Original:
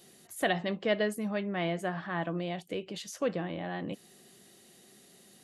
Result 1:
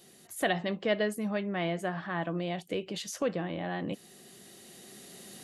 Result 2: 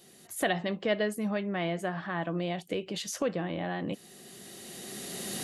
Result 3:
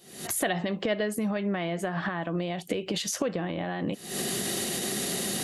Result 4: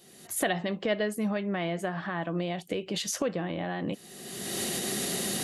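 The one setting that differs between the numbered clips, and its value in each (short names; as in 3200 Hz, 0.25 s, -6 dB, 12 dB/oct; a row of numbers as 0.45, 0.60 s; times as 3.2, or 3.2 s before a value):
recorder AGC, rising by: 5.1, 13, 89, 34 dB/s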